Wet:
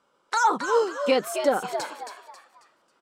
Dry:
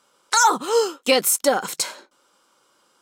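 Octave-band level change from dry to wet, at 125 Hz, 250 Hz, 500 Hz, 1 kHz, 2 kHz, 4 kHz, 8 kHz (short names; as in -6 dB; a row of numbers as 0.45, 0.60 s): n/a, -2.5 dB, -2.5 dB, -3.0 dB, -4.5 dB, -10.5 dB, -15.5 dB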